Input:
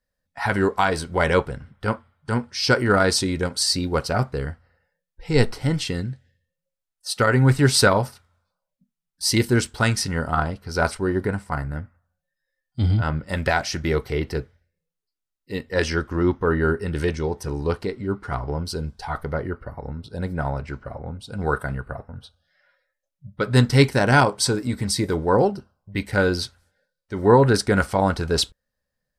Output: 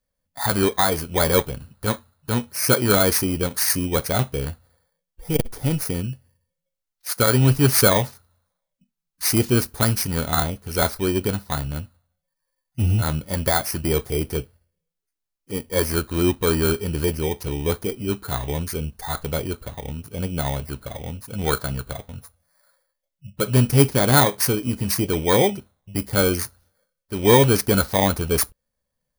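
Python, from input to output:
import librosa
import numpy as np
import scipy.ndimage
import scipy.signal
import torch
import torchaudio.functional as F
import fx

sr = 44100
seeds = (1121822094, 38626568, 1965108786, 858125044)

y = fx.bit_reversed(x, sr, seeds[0], block=16)
y = fx.transformer_sat(y, sr, knee_hz=210.0)
y = F.gain(torch.from_numpy(y), 1.0).numpy()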